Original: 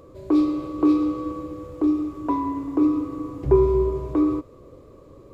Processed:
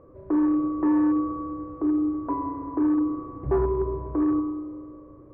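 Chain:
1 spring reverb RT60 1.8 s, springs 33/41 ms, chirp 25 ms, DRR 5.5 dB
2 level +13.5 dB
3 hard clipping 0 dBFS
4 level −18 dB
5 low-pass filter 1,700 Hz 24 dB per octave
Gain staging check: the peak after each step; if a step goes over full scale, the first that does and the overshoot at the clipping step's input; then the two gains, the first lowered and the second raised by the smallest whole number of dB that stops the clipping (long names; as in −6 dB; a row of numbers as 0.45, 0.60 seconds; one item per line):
−5.5, +8.0, 0.0, −18.0, −17.0 dBFS
step 2, 8.0 dB
step 2 +5.5 dB, step 4 −10 dB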